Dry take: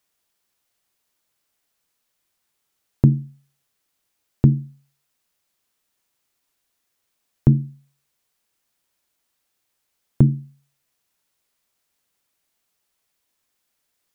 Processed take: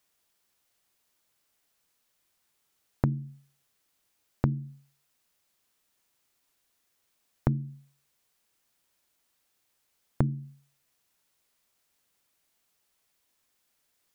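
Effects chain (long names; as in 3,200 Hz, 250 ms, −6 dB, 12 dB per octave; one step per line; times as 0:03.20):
downward compressor 6 to 1, threshold −23 dBFS, peak gain reduction 14 dB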